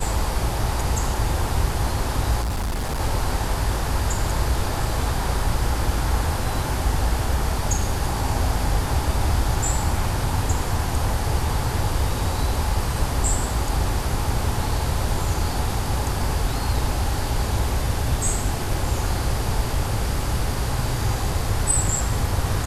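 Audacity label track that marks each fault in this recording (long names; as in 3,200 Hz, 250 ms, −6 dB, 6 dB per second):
2.410000	3.010000	clipping −21.5 dBFS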